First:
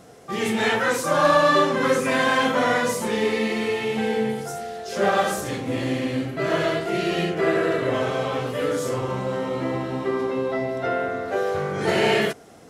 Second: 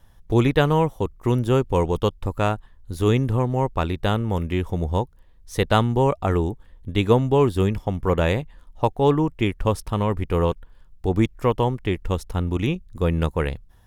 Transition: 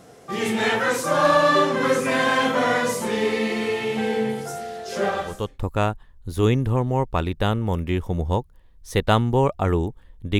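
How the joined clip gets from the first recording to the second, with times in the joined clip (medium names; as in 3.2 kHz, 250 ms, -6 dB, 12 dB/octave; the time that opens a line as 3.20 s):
first
5.30 s: go over to second from 1.93 s, crossfade 0.68 s quadratic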